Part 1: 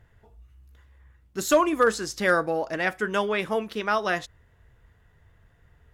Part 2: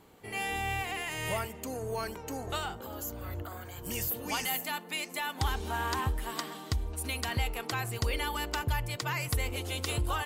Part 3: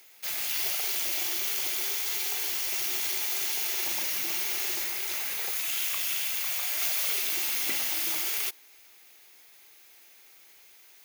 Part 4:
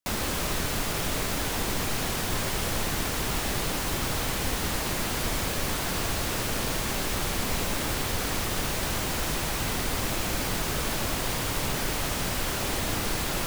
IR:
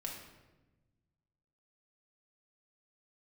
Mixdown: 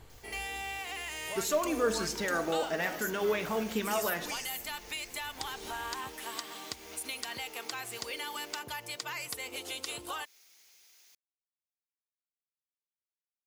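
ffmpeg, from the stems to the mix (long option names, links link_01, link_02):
-filter_complex "[0:a]alimiter=limit=-21dB:level=0:latency=1:release=53,aphaser=in_gain=1:out_gain=1:delay=4.8:decay=0.44:speed=0.54:type=triangular,volume=-6dB,asplit=2[link_01][link_02];[link_02]volume=-3.5dB[link_03];[1:a]highpass=290,volume=-1.5dB[link_04];[2:a]acrossover=split=2600[link_05][link_06];[link_06]acompressor=threshold=-39dB:ratio=4:attack=1:release=60[link_07];[link_05][link_07]amix=inputs=2:normalize=0,equalizer=frequency=5700:width_type=o:width=0.77:gain=6,acompressor=threshold=-43dB:ratio=2.5,adelay=100,volume=-11.5dB,asplit=2[link_08][link_09];[link_09]volume=-12dB[link_10];[link_04][link_08]amix=inputs=2:normalize=0,equalizer=frequency=5500:width=0.47:gain=6,acompressor=threshold=-37dB:ratio=2.5,volume=0dB[link_11];[4:a]atrim=start_sample=2205[link_12];[link_03][link_10]amix=inputs=2:normalize=0[link_13];[link_13][link_12]afir=irnorm=-1:irlink=0[link_14];[link_01][link_11][link_14]amix=inputs=3:normalize=0"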